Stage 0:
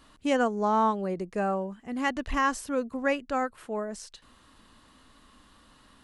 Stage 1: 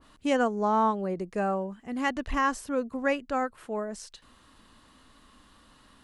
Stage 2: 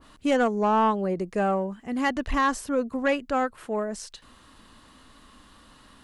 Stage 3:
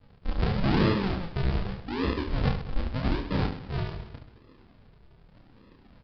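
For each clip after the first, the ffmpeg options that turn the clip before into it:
ffmpeg -i in.wav -af "adynamicequalizer=threshold=0.00891:dfrequency=1900:dqfactor=0.7:tfrequency=1900:tqfactor=0.7:attack=5:release=100:ratio=0.375:range=2:mode=cutabove:tftype=highshelf" out.wav
ffmpeg -i in.wav -af "asoftclip=type=tanh:threshold=-18.5dB,volume=4.5dB" out.wav
ffmpeg -i in.wav -af "aresample=16000,acrusher=samples=41:mix=1:aa=0.000001:lfo=1:lforange=41:lforate=0.84,aresample=44100,aecho=1:1:30|72|130.8|213.1|328.4:0.631|0.398|0.251|0.158|0.1,aresample=11025,aresample=44100,volume=-3.5dB" out.wav

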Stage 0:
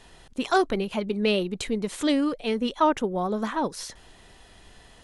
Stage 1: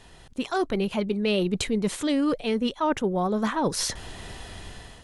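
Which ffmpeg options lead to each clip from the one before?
ffmpeg -i in.wav -af "dynaudnorm=framelen=330:gausssize=5:maxgain=12dB,equalizer=frequency=100:width_type=o:width=1.4:gain=5.5,areverse,acompressor=threshold=-22dB:ratio=6,areverse" out.wav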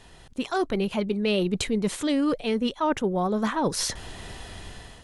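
ffmpeg -i in.wav -af anull out.wav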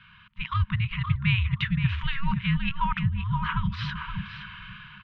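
ffmpeg -i in.wav -filter_complex "[0:a]asplit=2[link_01][link_02];[link_02]adelay=522,lowpass=frequency=2100:poles=1,volume=-5dB,asplit=2[link_03][link_04];[link_04]adelay=522,lowpass=frequency=2100:poles=1,volume=0.18,asplit=2[link_05][link_06];[link_06]adelay=522,lowpass=frequency=2100:poles=1,volume=0.18[link_07];[link_01][link_03][link_05][link_07]amix=inputs=4:normalize=0,afftfilt=real='re*(1-between(b*sr/4096,490,1200))':imag='im*(1-between(b*sr/4096,490,1200))':win_size=4096:overlap=0.75,highpass=frequency=330:width_type=q:width=0.5412,highpass=frequency=330:width_type=q:width=1.307,lowpass=frequency=3400:width_type=q:width=0.5176,lowpass=frequency=3400:width_type=q:width=0.7071,lowpass=frequency=3400:width_type=q:width=1.932,afreqshift=-280,volume=4dB" out.wav

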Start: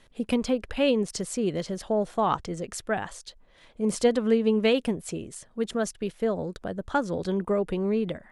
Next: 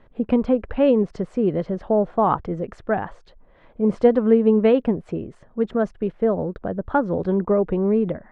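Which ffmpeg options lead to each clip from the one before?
ffmpeg -i in.wav -af "lowpass=1300,volume=6.5dB" out.wav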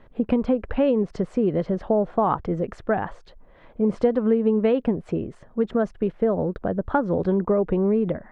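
ffmpeg -i in.wav -af "acompressor=threshold=-20dB:ratio=3,volume=2dB" out.wav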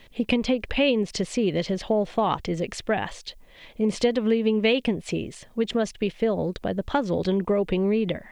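ffmpeg -i in.wav -af "aexciter=amount=10.7:drive=3.3:freq=2100,volume=-2dB" out.wav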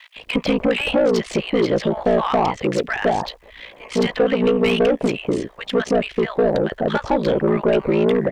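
ffmpeg -i in.wav -filter_complex "[0:a]aeval=exprs='val(0)*sin(2*PI*29*n/s)':channel_layout=same,acrossover=split=1100[link_01][link_02];[link_01]adelay=160[link_03];[link_03][link_02]amix=inputs=2:normalize=0,asplit=2[link_04][link_05];[link_05]highpass=frequency=720:poles=1,volume=23dB,asoftclip=type=tanh:threshold=-9.5dB[link_06];[link_04][link_06]amix=inputs=2:normalize=0,lowpass=frequency=1200:poles=1,volume=-6dB,volume=3dB" out.wav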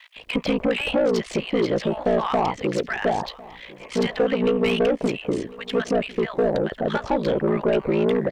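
ffmpeg -i in.wav -af "aecho=1:1:1051:0.0891,volume=-3.5dB" out.wav

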